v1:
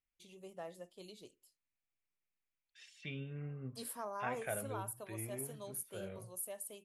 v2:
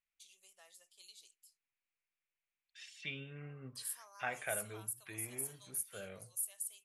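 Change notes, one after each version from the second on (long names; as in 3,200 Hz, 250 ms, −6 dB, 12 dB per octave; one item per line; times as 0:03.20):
first voice: add resonant band-pass 7,700 Hz, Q 0.77
master: add tilt shelving filter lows −6 dB, about 700 Hz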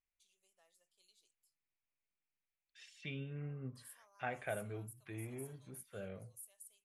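first voice −8.5 dB
master: add tilt shelving filter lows +6 dB, about 700 Hz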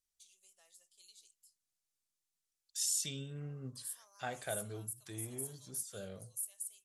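second voice: remove low-pass with resonance 2,400 Hz, resonance Q 3.6
master: add parametric band 7,600 Hz +14.5 dB 2.5 octaves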